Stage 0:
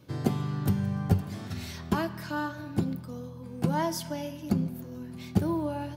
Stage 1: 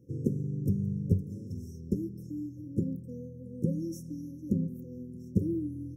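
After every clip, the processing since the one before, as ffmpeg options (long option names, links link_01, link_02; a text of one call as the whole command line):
ffmpeg -i in.wav -af "afftfilt=real='re*(1-between(b*sr/4096,550,5300))':imag='im*(1-between(b*sr/4096,550,5300))':win_size=4096:overlap=0.75,highshelf=frequency=2900:gain=-11.5,volume=-2dB" out.wav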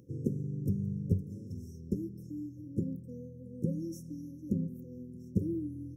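ffmpeg -i in.wav -af "acompressor=mode=upward:threshold=-51dB:ratio=2.5,volume=-3dB" out.wav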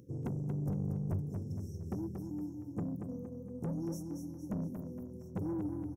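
ffmpeg -i in.wav -af "asoftclip=type=tanh:threshold=-33dB,aecho=1:1:232|464|696|928|1160:0.501|0.226|0.101|0.0457|0.0206,volume=1dB" out.wav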